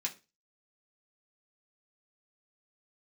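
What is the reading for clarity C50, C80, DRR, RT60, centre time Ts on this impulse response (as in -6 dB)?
16.0 dB, 23.0 dB, -2.5 dB, 0.30 s, 10 ms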